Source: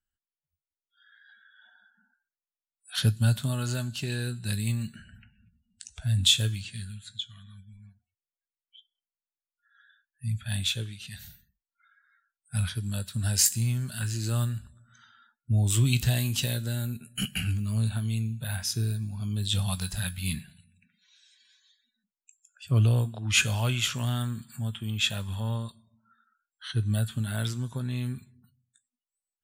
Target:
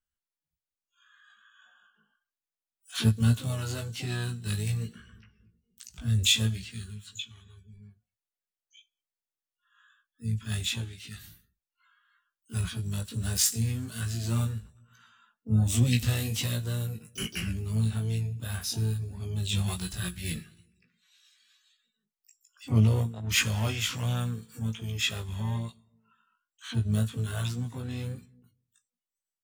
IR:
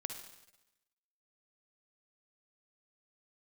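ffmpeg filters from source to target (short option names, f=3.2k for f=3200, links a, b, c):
-filter_complex "[0:a]asplit=3[a][b][c];[b]asetrate=33038,aresample=44100,atempo=1.33484,volume=-9dB[d];[c]asetrate=88200,aresample=44100,atempo=0.5,volume=-10dB[e];[a][d][e]amix=inputs=3:normalize=0,flanger=delay=16.5:depth=2.4:speed=1.2"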